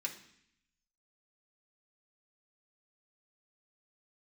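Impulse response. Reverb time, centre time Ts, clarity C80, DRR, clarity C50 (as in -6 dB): 0.65 s, 14 ms, 14.0 dB, -1.5 dB, 10.5 dB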